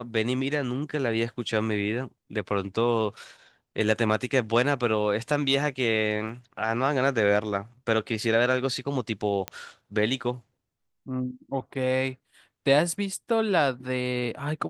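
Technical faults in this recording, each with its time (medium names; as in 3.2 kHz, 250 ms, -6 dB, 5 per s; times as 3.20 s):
6.29 s: dropout 3.2 ms
9.48 s: pop -14 dBFS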